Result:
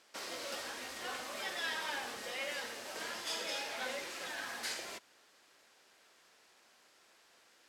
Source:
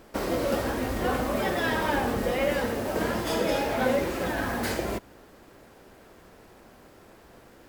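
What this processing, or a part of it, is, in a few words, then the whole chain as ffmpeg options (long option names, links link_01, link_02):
piezo pickup straight into a mixer: -af "lowpass=5500,aderivative,volume=3.5dB"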